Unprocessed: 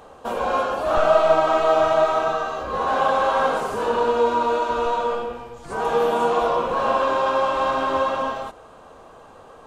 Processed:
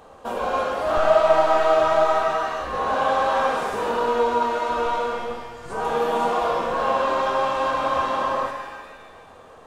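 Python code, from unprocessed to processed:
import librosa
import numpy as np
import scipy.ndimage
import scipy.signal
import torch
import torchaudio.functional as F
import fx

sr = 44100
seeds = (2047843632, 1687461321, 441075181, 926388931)

y = fx.spec_repair(x, sr, seeds[0], start_s=7.76, length_s=0.67, low_hz=220.0, high_hz=1300.0, source='before')
y = fx.rev_shimmer(y, sr, seeds[1], rt60_s=1.4, semitones=7, shimmer_db=-8, drr_db=4.5)
y = F.gain(torch.from_numpy(y), -2.5).numpy()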